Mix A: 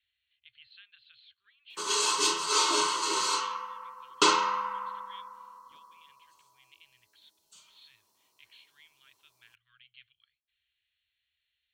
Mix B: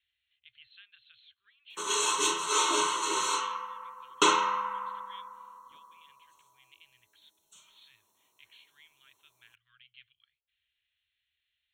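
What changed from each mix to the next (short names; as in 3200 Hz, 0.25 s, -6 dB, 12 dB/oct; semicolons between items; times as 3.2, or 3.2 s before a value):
master: add Butterworth band-stop 4800 Hz, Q 3.2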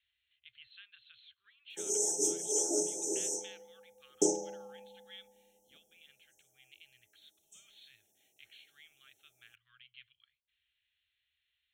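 background: add brick-wall FIR band-stop 860–5000 Hz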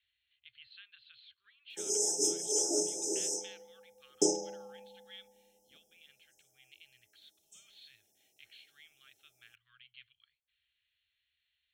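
master: remove Butterworth band-stop 4800 Hz, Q 3.2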